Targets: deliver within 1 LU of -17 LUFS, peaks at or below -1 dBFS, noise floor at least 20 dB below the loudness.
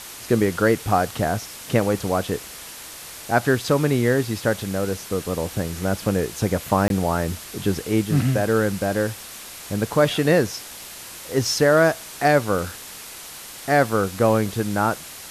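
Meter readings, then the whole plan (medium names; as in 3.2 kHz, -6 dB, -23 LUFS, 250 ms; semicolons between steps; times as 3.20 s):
dropouts 1; longest dropout 22 ms; noise floor -39 dBFS; noise floor target -42 dBFS; loudness -22.0 LUFS; peak level -4.5 dBFS; loudness target -17.0 LUFS
-> interpolate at 6.88 s, 22 ms; noise print and reduce 6 dB; trim +5 dB; peak limiter -1 dBFS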